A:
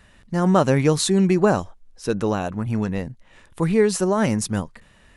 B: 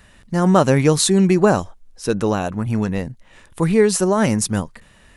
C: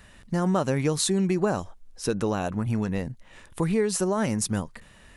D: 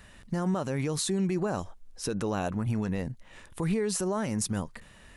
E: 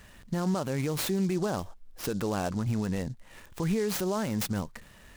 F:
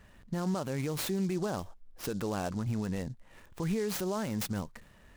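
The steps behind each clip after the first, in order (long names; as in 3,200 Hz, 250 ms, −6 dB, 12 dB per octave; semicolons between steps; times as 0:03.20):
high-shelf EQ 8,100 Hz +6 dB; level +3 dB
downward compressor 2.5 to 1, threshold −22 dBFS, peak gain reduction 9.5 dB; level −2 dB
brickwall limiter −19.5 dBFS, peak gain reduction 7.5 dB; level −1 dB
short delay modulated by noise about 5,300 Hz, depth 0.036 ms
one half of a high-frequency compander decoder only; level −3.5 dB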